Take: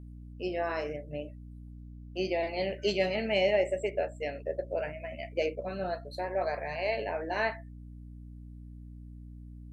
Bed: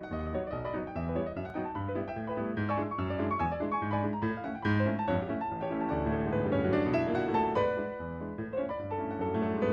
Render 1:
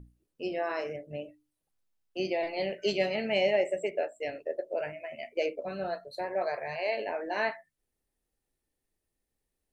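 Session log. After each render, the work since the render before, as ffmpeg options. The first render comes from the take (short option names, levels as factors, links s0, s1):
-af "bandreject=f=60:t=h:w=6,bandreject=f=120:t=h:w=6,bandreject=f=180:t=h:w=6,bandreject=f=240:t=h:w=6,bandreject=f=300:t=h:w=6"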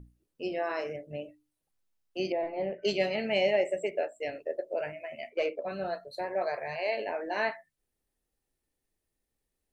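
-filter_complex "[0:a]asettb=1/sr,asplit=3[s0][s1][s2];[s0]atrim=end=2.324[s3];[s1]atrim=start=2.32:end=2.85,asetpts=PTS-STARTPTS,afade=t=in:d=0.004:c=qsin,afade=t=out:st=0.526:d=0.004:c=qsin,lowpass=1300[s4];[s2]atrim=start=2.846[s5];[s3][s4]acrossfade=d=0.004:c1=hsin:c2=qsin[s6];[s6][s5]acrossfade=d=0.004:c1=qsin:c2=hsin,asettb=1/sr,asplit=3[s7][s8][s9];[s7]atrim=end=5.304[s10];[s8]atrim=start=5.3:end=5.72,asetpts=PTS-STARTPTS,afade=t=in:d=0.004:c=qsin,afade=t=out:st=0.416:d=0.004:c=qsin,asplit=2[s11][s12];[s12]highpass=f=720:p=1,volume=2.82,asoftclip=type=tanh:threshold=0.126[s13];[s11][s13]amix=inputs=2:normalize=0,lowpass=f=2200:p=1,volume=0.501[s14];[s9]atrim=start=5.716[s15];[s10][s14]acrossfade=d=0.004:c1=hsin:c2=qsin[s16];[s16][s15]acrossfade=d=0.004:c1=qsin:c2=hsin"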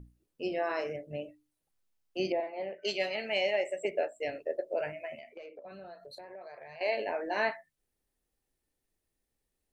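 -filter_complex "[0:a]asettb=1/sr,asplit=3[s0][s1][s2];[s0]atrim=end=2.404[s3];[s1]atrim=start=2.4:end=3.85,asetpts=PTS-STARTPTS,afade=t=in:d=0.004:c=qsin,afade=t=out:st=1.446:d=0.004:c=qsin,highpass=f=750:p=1[s4];[s2]atrim=start=3.846[s5];[s3][s4]acrossfade=d=0.004:c1=hsin:c2=qsin[s6];[s6][s5]acrossfade=d=0.004:c1=qsin:c2=hsin,asettb=1/sr,asplit=3[s7][s8][s9];[s7]atrim=end=5.164[s10];[s8]atrim=start=5.16:end=6.81,asetpts=PTS-STARTPTS,afade=t=in:d=0.004:c=qsin,afade=t=out:st=1.646:d=0.004:c=qsin,acompressor=threshold=0.00631:ratio=8:attack=3.2:release=140:knee=1:detection=peak[s11];[s9]atrim=start=6.806[s12];[s10][s11]acrossfade=d=0.004:c1=hsin:c2=qsin[s13];[s13][s12]acrossfade=d=0.004:c1=qsin:c2=hsin"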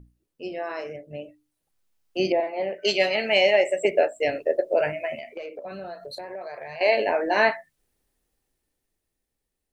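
-af "dynaudnorm=f=370:g=11:m=3.55"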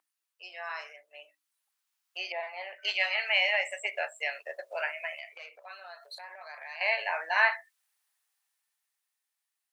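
-filter_complex "[0:a]highpass=f=950:w=0.5412,highpass=f=950:w=1.3066,acrossover=split=3100[s0][s1];[s1]acompressor=threshold=0.00631:ratio=4:attack=1:release=60[s2];[s0][s2]amix=inputs=2:normalize=0"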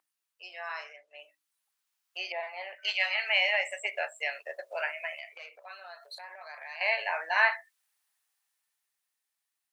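-filter_complex "[0:a]asettb=1/sr,asplit=3[s0][s1][s2];[s0]atrim=end=0.794[s3];[s1]atrim=start=0.79:end=1.19,asetpts=PTS-STARTPTS,afade=t=in:d=0.004:c=qsin,afade=t=out:st=0.396:d=0.004:c=qsin,lowpass=6900[s4];[s2]atrim=start=1.186[s5];[s3][s4]acrossfade=d=0.004:c1=hsin:c2=qsin[s6];[s6][s5]acrossfade=d=0.004:c1=qsin:c2=hsin,asettb=1/sr,asplit=3[s7][s8][s9];[s7]atrim=end=2.754[s10];[s8]atrim=start=2.75:end=3.27,asetpts=PTS-STARTPTS,afade=t=in:d=0.004:c=qsin,afade=t=out:st=0.516:d=0.004:c=qsin,highpass=580[s11];[s9]atrim=start=3.266[s12];[s10][s11]acrossfade=d=0.004:c1=hsin:c2=qsin[s13];[s13][s12]acrossfade=d=0.004:c1=qsin:c2=hsin"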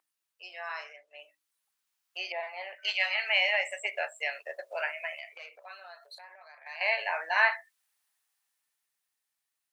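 -filter_complex "[0:a]asplit=2[s0][s1];[s0]atrim=end=6.66,asetpts=PTS-STARTPTS,afade=t=out:st=5.61:d=1.05:silence=0.298538[s2];[s1]atrim=start=6.66,asetpts=PTS-STARTPTS,afade=t=in:d=0.004:c=hsin:silence=0.298538[s3];[s2][s3]concat=n=2:v=0:a=1"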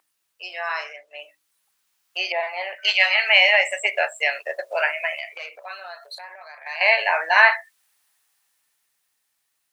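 -af "volume=3.55,alimiter=limit=0.794:level=0:latency=1"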